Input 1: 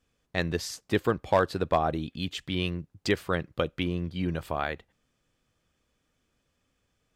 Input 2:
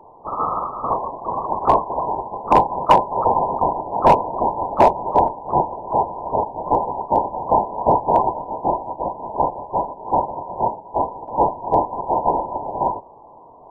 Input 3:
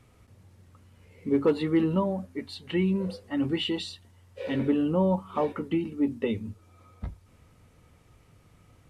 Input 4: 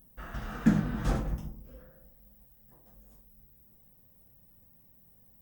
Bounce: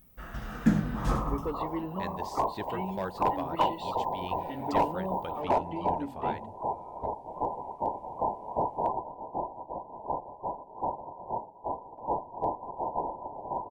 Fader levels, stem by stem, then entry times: -12.5, -13.5, -11.5, 0.0 dB; 1.65, 0.70, 0.00, 0.00 s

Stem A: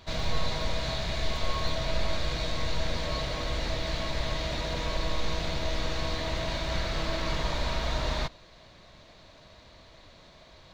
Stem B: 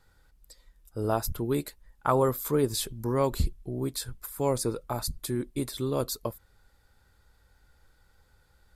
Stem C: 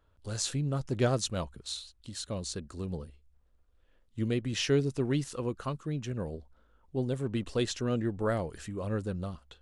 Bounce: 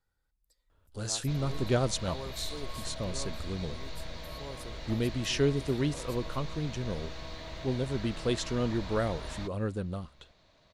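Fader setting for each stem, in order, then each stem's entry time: -11.0, -18.0, 0.0 dB; 1.20, 0.00, 0.70 s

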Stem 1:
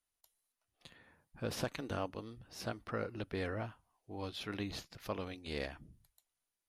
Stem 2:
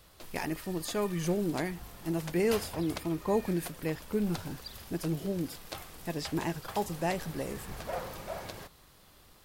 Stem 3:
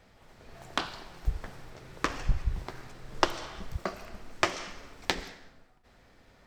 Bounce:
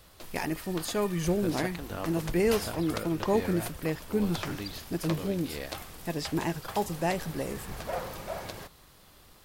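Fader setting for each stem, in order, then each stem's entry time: +1.0, +2.5, -12.0 dB; 0.00, 0.00, 0.00 s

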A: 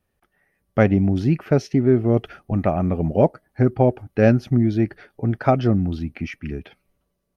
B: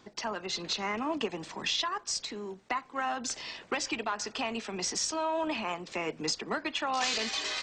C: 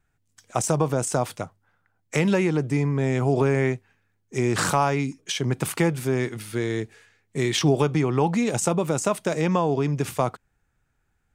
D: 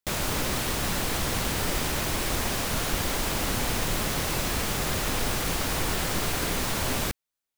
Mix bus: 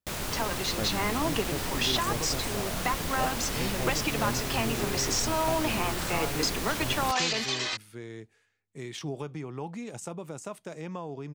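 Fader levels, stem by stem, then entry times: -19.0, +2.5, -15.5, -5.5 dB; 0.00, 0.15, 1.40, 0.00 s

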